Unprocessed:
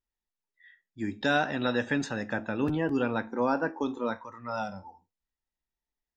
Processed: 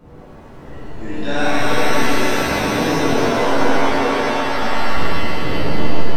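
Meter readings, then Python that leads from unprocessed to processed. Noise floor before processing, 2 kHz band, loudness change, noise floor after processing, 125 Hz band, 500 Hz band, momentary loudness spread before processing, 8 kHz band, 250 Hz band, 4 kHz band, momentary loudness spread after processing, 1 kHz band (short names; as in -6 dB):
under -85 dBFS, +12.0 dB, +11.5 dB, -39 dBFS, +12.5 dB, +12.5 dB, 10 LU, +20.5 dB, +10.0 dB, +16.5 dB, 10 LU, +14.0 dB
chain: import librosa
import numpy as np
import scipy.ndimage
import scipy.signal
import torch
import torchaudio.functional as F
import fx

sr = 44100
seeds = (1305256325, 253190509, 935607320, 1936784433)

p1 = fx.dmg_wind(x, sr, seeds[0], corner_hz=340.0, level_db=-39.0)
p2 = fx.level_steps(p1, sr, step_db=17)
p3 = p1 + F.gain(torch.from_numpy(p2), 2.0).numpy()
p4 = fx.dmg_noise_colour(p3, sr, seeds[1], colour='brown', level_db=-47.0)
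p5 = fx.hum_notches(p4, sr, base_hz=50, count=8)
p6 = p5 + fx.echo_bbd(p5, sr, ms=127, stages=2048, feedback_pct=72, wet_db=-7, dry=0)
p7 = fx.rev_shimmer(p6, sr, seeds[2], rt60_s=3.0, semitones=7, shimmer_db=-2, drr_db=-12.0)
y = F.gain(torch.from_numpy(p7), -8.5).numpy()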